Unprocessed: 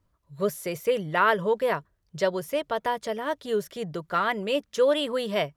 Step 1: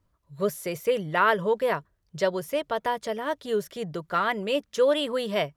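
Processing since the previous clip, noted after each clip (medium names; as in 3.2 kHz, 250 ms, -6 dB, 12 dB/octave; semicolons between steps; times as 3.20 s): no audible change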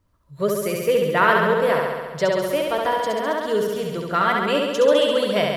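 flutter echo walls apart 11.7 m, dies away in 1.4 s; trim +3.5 dB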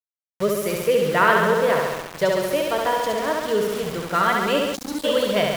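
time-frequency box 4.75–5.04 s, 340–3800 Hz -29 dB; small samples zeroed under -28.5 dBFS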